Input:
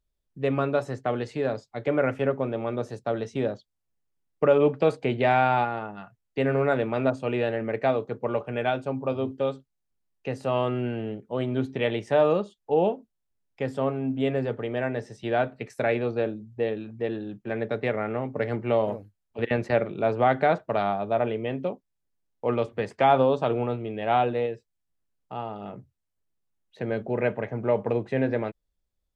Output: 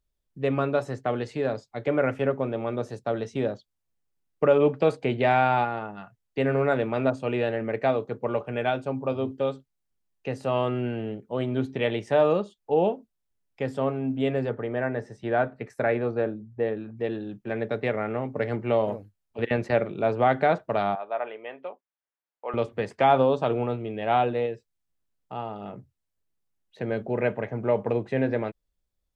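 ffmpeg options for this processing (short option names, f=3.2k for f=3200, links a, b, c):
-filter_complex "[0:a]asettb=1/sr,asplit=3[a][b][c];[a]atrim=end=14.494[d];[b]atrim=start=14.49:end=16.97,asetpts=PTS-STARTPTS,afade=t=in:d=0.004:c=qsin,afade=t=out:st=2.476:d=0.004:c=qsin,highshelf=f=2.2k:t=q:w=1.5:g=-6[e];[c]atrim=start=16.966[f];[d][e]acrossfade=d=0.004:c1=hsin:c2=qsin[g];[g][f]acrossfade=d=0.004:c1=qsin:c2=hsin,asettb=1/sr,asplit=3[h][i][j];[h]atrim=end=20.954[k];[i]atrim=start=20.95:end=22.54,asetpts=PTS-STARTPTS,afade=t=in:d=0.004:c=qsin,afade=t=out:st=1.586:d=0.004:c=qsin,highpass=770,lowpass=2.3k[l];[j]atrim=start=22.536[m];[k][l]acrossfade=d=0.004:c1=hsin:c2=qsin[n];[n][m]acrossfade=d=0.004:c1=qsin:c2=hsin"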